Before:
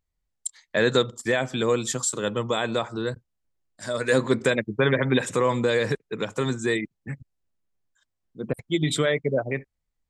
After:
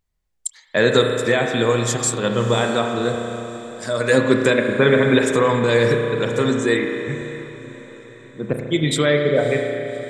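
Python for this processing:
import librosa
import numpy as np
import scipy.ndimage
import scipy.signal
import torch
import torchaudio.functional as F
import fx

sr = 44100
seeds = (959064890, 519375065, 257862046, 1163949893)

y = fx.echo_diffused(x, sr, ms=588, feedback_pct=54, wet_db=-16)
y = fx.rev_spring(y, sr, rt60_s=2.6, pass_ms=(34,), chirp_ms=55, drr_db=3.0)
y = y * librosa.db_to_amplitude(4.5)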